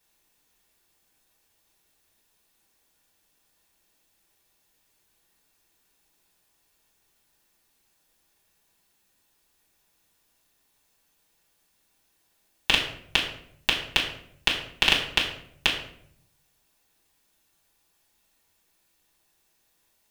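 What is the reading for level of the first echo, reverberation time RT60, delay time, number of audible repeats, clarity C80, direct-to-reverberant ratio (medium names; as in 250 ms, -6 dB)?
no echo, 0.65 s, no echo, no echo, 9.5 dB, -5.0 dB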